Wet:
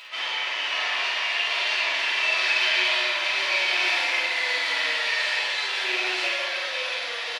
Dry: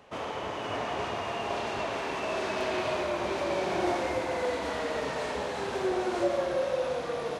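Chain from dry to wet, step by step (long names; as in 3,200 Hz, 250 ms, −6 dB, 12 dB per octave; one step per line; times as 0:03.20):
loose part that buzzes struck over −37 dBFS, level −28 dBFS
upward compression, threshold −44 dBFS
high-pass filter 1,200 Hz 12 dB per octave
flat-topped bell 3,100 Hz +11.5 dB
double-tracking delay 49 ms −3 dB
rectangular room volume 150 cubic metres, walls furnished, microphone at 3 metres
level −2.5 dB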